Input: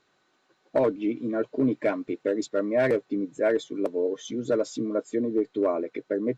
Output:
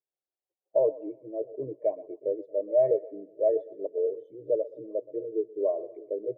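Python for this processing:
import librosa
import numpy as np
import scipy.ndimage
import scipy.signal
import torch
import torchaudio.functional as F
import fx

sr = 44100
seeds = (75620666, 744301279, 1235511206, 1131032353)

p1 = scipy.signal.sosfilt(scipy.signal.butter(2, 1300.0, 'lowpass', fs=sr, output='sos'), x)
p2 = fx.fixed_phaser(p1, sr, hz=580.0, stages=4)
p3 = p2 + fx.echo_split(p2, sr, split_hz=440.0, low_ms=633, high_ms=122, feedback_pct=52, wet_db=-12.0, dry=0)
y = fx.spectral_expand(p3, sr, expansion=1.5)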